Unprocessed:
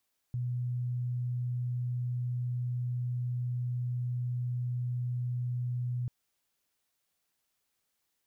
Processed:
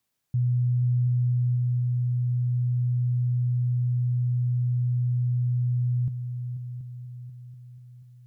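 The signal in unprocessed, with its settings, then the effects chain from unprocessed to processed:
tone sine 123 Hz -30 dBFS 5.74 s
peaking EQ 140 Hz +11 dB 1.3 oct; on a send: multi-head delay 243 ms, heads second and third, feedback 50%, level -13 dB

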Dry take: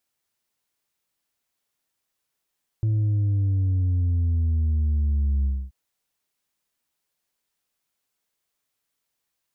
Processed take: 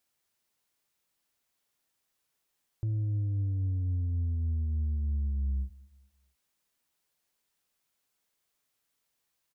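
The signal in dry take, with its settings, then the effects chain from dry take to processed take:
sub drop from 110 Hz, over 2.88 s, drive 3 dB, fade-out 0.26 s, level -19.5 dB
peak limiter -27.5 dBFS; feedback delay 218 ms, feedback 38%, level -23 dB

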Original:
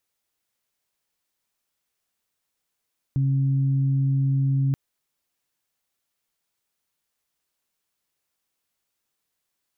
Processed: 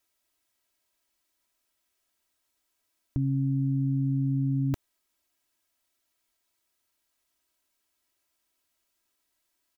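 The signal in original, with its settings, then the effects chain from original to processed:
steady additive tone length 1.58 s, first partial 136 Hz, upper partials -14 dB, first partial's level -18.5 dB
comb 3.1 ms, depth 75%

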